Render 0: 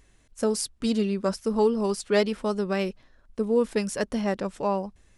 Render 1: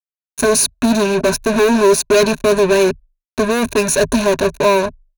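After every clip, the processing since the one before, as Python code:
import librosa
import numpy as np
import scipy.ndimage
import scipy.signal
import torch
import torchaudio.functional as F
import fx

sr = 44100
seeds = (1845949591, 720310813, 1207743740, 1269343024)

y = fx.fuzz(x, sr, gain_db=38.0, gate_db=-39.0)
y = fx.ripple_eq(y, sr, per_octave=1.5, db=13)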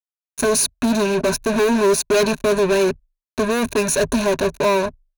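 y = fx.leveller(x, sr, passes=1)
y = y * 10.0 ** (-6.5 / 20.0)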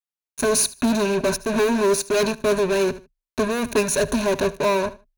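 y = fx.echo_feedback(x, sr, ms=76, feedback_pct=23, wet_db=-17.5)
y = fx.am_noise(y, sr, seeds[0], hz=5.7, depth_pct=65)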